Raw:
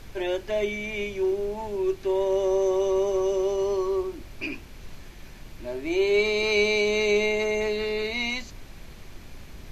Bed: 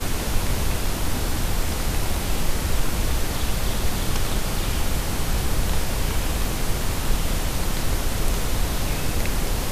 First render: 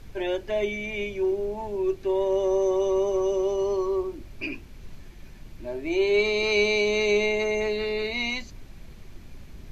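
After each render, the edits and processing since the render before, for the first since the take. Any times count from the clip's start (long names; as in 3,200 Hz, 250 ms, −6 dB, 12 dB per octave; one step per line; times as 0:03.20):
broadband denoise 6 dB, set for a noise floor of −44 dBFS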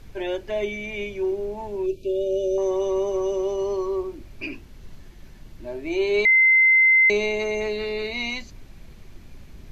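0:01.86–0:02.58: linear-phase brick-wall band-stop 660–2,300 Hz
0:04.51–0:05.67: notch filter 2,400 Hz
0:06.25–0:07.10: beep over 2,070 Hz −12.5 dBFS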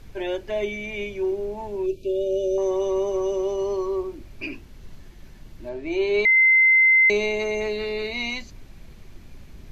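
0:05.69–0:06.37: high-frequency loss of the air 62 metres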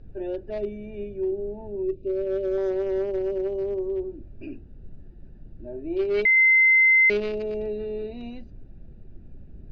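adaptive Wiener filter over 41 samples
low-pass filter 5,200 Hz 24 dB per octave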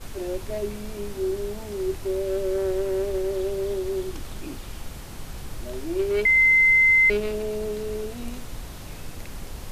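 mix in bed −14 dB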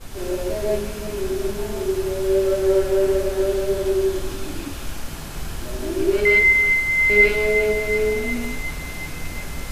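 feedback echo with a band-pass in the loop 363 ms, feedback 71%, band-pass 1,800 Hz, level −8 dB
reverb whose tail is shaped and stops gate 200 ms rising, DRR −5.5 dB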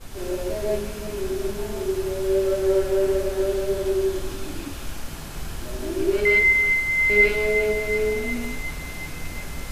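level −2.5 dB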